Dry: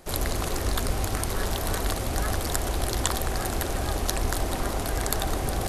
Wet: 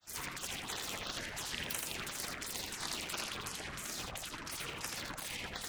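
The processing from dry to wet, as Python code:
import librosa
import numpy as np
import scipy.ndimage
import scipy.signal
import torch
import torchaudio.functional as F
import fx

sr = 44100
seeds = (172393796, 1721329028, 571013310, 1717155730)

y = fx.tilt_shelf(x, sr, db=4.0, hz=650.0)
y = fx.filter_lfo_bandpass(y, sr, shape='saw_down', hz=2.9, low_hz=540.0, high_hz=4900.0, q=3.9)
y = fx.over_compress(y, sr, threshold_db=-46.0, ratio=-1.0)
y = fx.granulator(y, sr, seeds[0], grain_ms=100.0, per_s=20.0, spray_ms=29.0, spread_st=12)
y = fx.spec_gate(y, sr, threshold_db=-15, keep='weak')
y = y + 10.0 ** (-3.5 / 20.0) * np.pad(y, (int(82 * sr / 1000.0), 0))[:len(y)]
y = y * librosa.db_to_amplitude(16.5)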